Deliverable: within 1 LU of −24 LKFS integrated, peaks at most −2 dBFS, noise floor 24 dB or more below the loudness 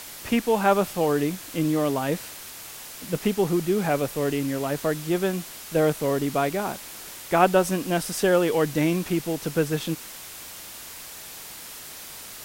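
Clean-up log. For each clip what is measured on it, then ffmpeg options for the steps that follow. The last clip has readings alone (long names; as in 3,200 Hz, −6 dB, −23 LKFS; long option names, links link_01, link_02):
background noise floor −41 dBFS; target noise floor −49 dBFS; integrated loudness −24.5 LKFS; sample peak −3.5 dBFS; target loudness −24.0 LKFS
→ -af "afftdn=noise_reduction=8:noise_floor=-41"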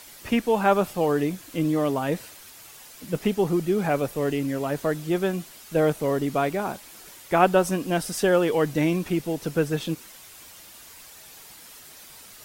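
background noise floor −47 dBFS; target noise floor −49 dBFS
→ -af "afftdn=noise_reduction=6:noise_floor=-47"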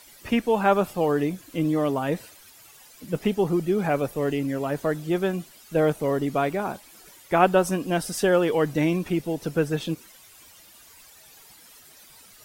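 background noise floor −51 dBFS; integrated loudness −25.0 LKFS; sample peak −3.5 dBFS; target loudness −24.0 LKFS
→ -af "volume=1dB"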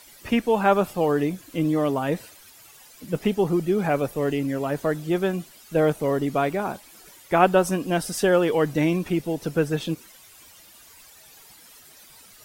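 integrated loudness −24.0 LKFS; sample peak −2.5 dBFS; background noise floor −50 dBFS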